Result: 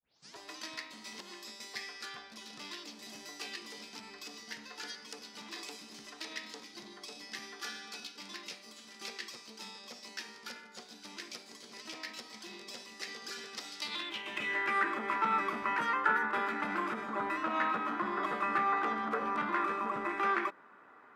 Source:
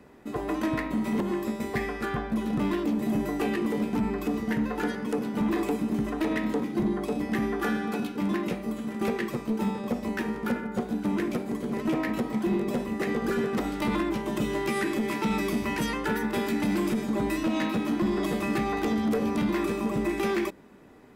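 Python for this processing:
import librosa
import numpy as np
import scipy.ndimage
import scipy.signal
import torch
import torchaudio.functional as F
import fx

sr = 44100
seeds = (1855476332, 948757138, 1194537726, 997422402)

y = fx.tape_start_head(x, sr, length_s=0.38)
y = fx.filter_sweep_bandpass(y, sr, from_hz=5000.0, to_hz=1300.0, start_s=13.8, end_s=14.82, q=3.2)
y = F.gain(torch.from_numpy(y), 8.5).numpy()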